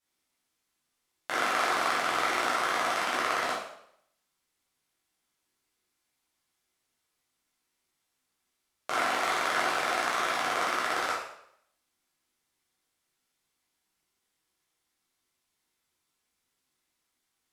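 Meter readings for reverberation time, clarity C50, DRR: 0.70 s, 2.0 dB, −8.0 dB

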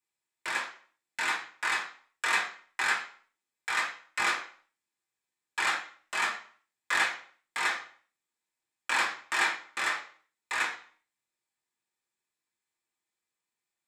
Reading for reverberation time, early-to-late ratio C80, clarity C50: 0.50 s, 13.0 dB, 8.0 dB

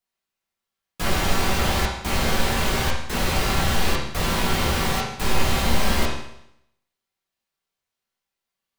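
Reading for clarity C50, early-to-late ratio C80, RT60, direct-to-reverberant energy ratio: 3.0 dB, 6.0 dB, 0.75 s, −6.5 dB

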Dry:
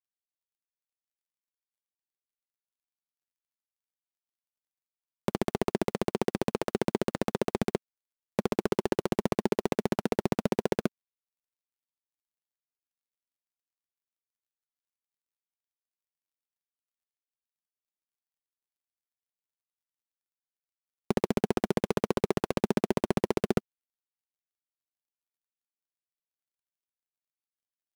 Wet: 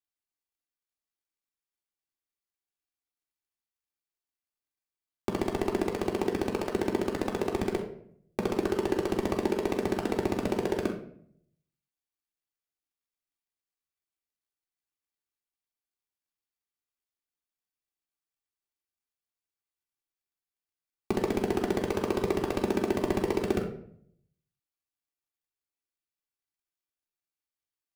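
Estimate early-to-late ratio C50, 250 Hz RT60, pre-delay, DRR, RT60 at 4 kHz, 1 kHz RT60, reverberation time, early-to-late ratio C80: 7.5 dB, 0.80 s, 3 ms, −1.0 dB, 0.45 s, 0.55 s, 0.65 s, 11.0 dB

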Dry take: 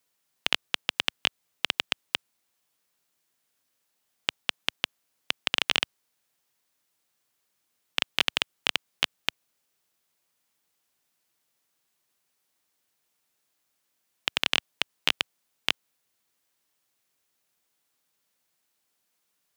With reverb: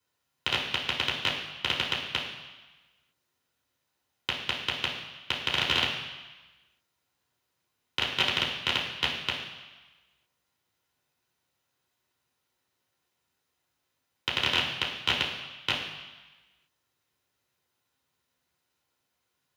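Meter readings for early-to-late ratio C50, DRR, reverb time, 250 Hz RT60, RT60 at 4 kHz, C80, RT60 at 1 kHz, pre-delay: 4.5 dB, −5.5 dB, 1.2 s, 1.1 s, 1.2 s, 6.5 dB, 1.3 s, 3 ms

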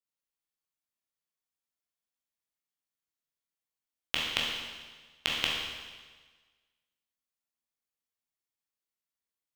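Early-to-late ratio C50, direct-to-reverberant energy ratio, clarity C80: 0.0 dB, −4.0 dB, 2.5 dB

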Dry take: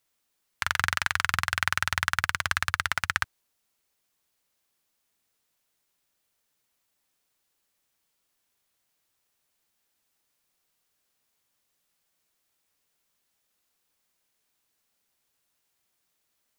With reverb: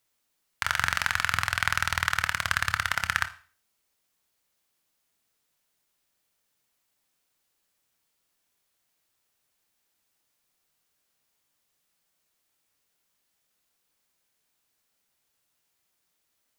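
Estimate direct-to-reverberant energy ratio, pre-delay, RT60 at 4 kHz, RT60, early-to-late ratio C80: 10.0 dB, 23 ms, 0.40 s, 0.40 s, 20.0 dB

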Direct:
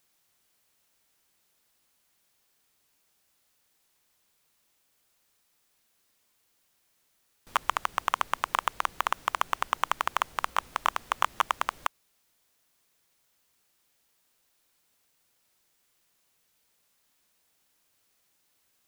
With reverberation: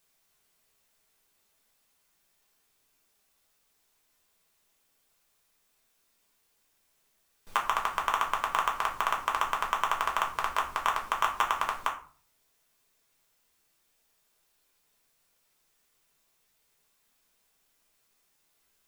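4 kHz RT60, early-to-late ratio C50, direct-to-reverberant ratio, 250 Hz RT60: 0.25 s, 10.0 dB, −0.5 dB, 0.55 s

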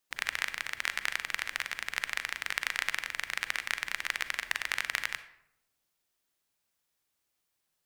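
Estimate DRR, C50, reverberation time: 11.0 dB, 12.5 dB, 0.80 s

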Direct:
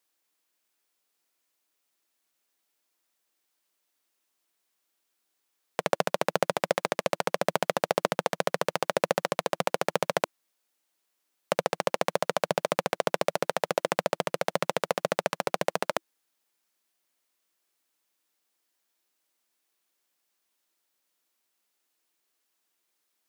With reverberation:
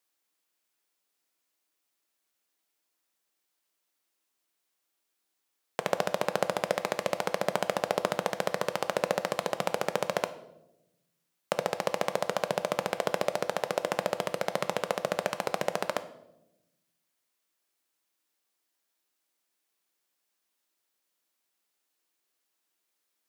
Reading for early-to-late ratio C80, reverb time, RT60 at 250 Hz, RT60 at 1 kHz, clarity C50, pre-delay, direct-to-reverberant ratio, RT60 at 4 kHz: 16.5 dB, 0.95 s, 1.4 s, 0.80 s, 14.5 dB, 6 ms, 10.5 dB, 0.65 s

